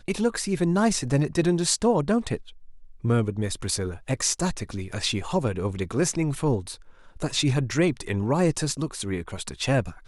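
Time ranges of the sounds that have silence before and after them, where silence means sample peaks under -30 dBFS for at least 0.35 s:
3.04–6.74

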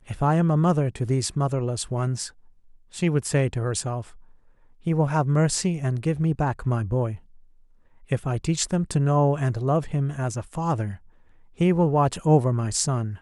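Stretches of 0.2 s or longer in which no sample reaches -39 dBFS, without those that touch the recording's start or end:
2.29–2.94
4.11–4.86
7.16–8.1
10.97–11.59

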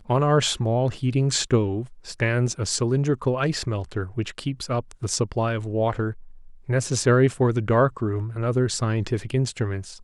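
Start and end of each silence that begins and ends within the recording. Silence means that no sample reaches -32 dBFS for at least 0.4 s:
6.12–6.69

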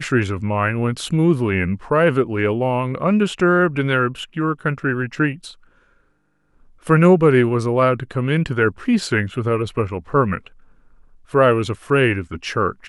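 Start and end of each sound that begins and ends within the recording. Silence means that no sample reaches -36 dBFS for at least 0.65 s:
6.85–10.47

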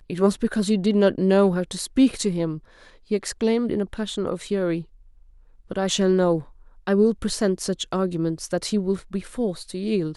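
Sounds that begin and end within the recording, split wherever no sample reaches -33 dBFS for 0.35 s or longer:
3.11–4.82
5.71–6.42

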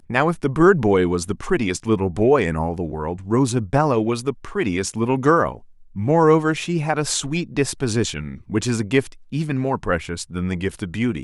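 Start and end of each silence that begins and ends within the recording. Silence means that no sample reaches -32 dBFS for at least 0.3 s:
5.57–5.96

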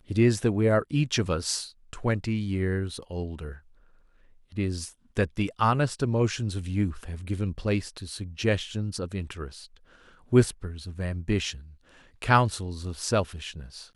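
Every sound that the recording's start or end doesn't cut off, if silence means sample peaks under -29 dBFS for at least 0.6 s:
4.57–9.46
10.33–11.51

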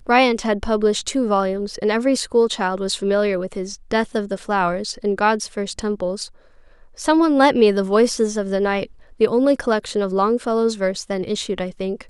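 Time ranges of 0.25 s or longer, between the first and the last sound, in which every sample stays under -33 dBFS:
6.27–6.98
8.86–9.2

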